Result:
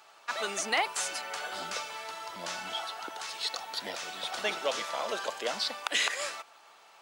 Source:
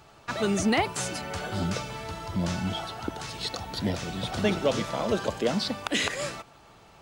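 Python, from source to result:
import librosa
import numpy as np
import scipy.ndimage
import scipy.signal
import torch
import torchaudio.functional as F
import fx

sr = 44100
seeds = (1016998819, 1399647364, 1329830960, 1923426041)

y = scipy.signal.sosfilt(scipy.signal.butter(2, 760.0, 'highpass', fs=sr, output='sos'), x)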